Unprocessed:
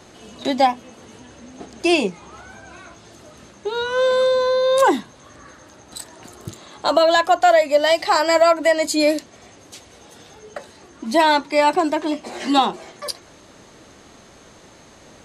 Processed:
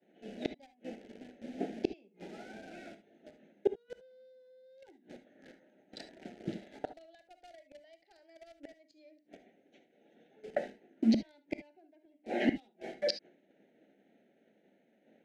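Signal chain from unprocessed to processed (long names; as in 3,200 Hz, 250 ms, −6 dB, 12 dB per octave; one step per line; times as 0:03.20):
adaptive Wiener filter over 9 samples
elliptic band-pass filter 200–5,600 Hz, stop band 60 dB
downward expander −37 dBFS
high-shelf EQ 2,100 Hz −4.5 dB
mains-hum notches 60/120/180/240/300/360/420/480 Hz
gate with flip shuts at −19 dBFS, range −40 dB
in parallel at −6 dB: bit-depth reduction 8 bits, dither none
on the sum: Butterworth band-reject 1,100 Hz, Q 1.1
high-frequency loss of the air 71 metres
reverb whose tail is shaped and stops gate 90 ms rising, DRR 10.5 dB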